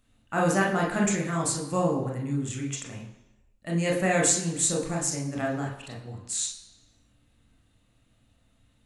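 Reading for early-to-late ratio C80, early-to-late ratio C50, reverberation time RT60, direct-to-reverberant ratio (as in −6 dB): 9.0 dB, 6.0 dB, 1.0 s, −2.0 dB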